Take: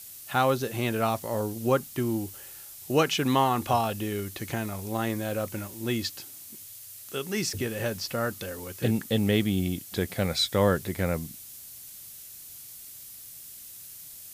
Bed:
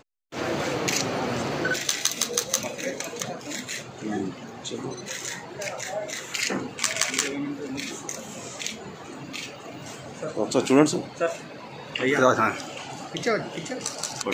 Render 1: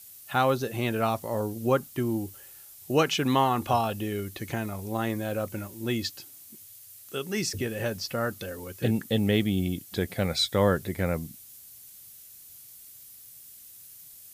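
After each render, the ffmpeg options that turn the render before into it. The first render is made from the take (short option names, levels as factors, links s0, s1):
-af "afftdn=nr=6:nf=-45"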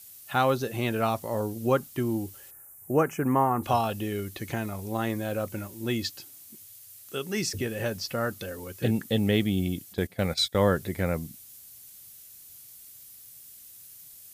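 -filter_complex "[0:a]asplit=3[s0][s1][s2];[s0]afade=t=out:st=2.5:d=0.02[s3];[s1]asuperstop=centerf=3900:order=4:qfactor=0.58,afade=t=in:st=2.5:d=0.02,afade=t=out:st=3.62:d=0.02[s4];[s2]afade=t=in:st=3.62:d=0.02[s5];[s3][s4][s5]amix=inputs=3:normalize=0,asplit=3[s6][s7][s8];[s6]afade=t=out:st=9.92:d=0.02[s9];[s7]agate=range=0.251:threshold=0.0224:ratio=16:release=100:detection=peak,afade=t=in:st=9.92:d=0.02,afade=t=out:st=10.73:d=0.02[s10];[s8]afade=t=in:st=10.73:d=0.02[s11];[s9][s10][s11]amix=inputs=3:normalize=0"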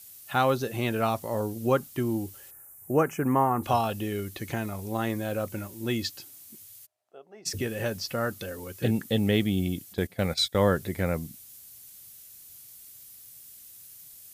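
-filter_complex "[0:a]asplit=3[s0][s1][s2];[s0]afade=t=out:st=6.85:d=0.02[s3];[s1]bandpass=f=690:t=q:w=5.9,afade=t=in:st=6.85:d=0.02,afade=t=out:st=7.45:d=0.02[s4];[s2]afade=t=in:st=7.45:d=0.02[s5];[s3][s4][s5]amix=inputs=3:normalize=0"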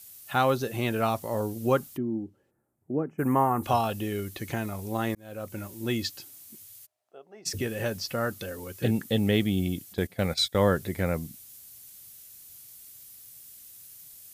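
-filter_complex "[0:a]asplit=3[s0][s1][s2];[s0]afade=t=out:st=1.96:d=0.02[s3];[s1]bandpass=f=240:t=q:w=1.4,afade=t=in:st=1.96:d=0.02,afade=t=out:st=3.18:d=0.02[s4];[s2]afade=t=in:st=3.18:d=0.02[s5];[s3][s4][s5]amix=inputs=3:normalize=0,asplit=2[s6][s7];[s6]atrim=end=5.15,asetpts=PTS-STARTPTS,afade=t=out:st=5.146:d=0.004:c=hsin[s8];[s7]atrim=start=5.15,asetpts=PTS-STARTPTS,afade=t=in:d=0.54[s9];[s8][s9]concat=n=2:v=0:a=1"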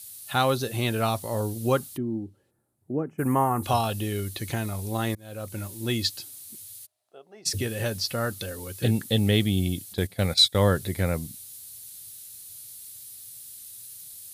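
-af "equalizer=f=100:t=o:w=0.67:g=6,equalizer=f=4000:t=o:w=0.67:g=8,equalizer=f=10000:t=o:w=0.67:g=9"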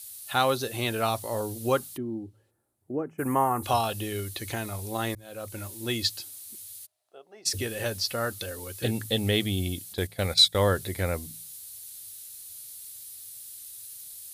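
-af "equalizer=f=160:t=o:w=1.3:g=-8,bandreject=f=54.07:t=h:w=4,bandreject=f=108.14:t=h:w=4,bandreject=f=162.21:t=h:w=4"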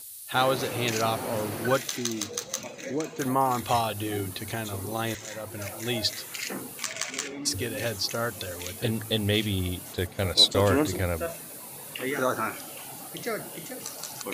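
-filter_complex "[1:a]volume=0.422[s0];[0:a][s0]amix=inputs=2:normalize=0"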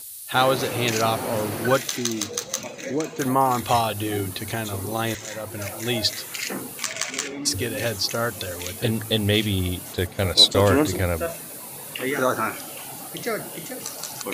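-af "volume=1.68"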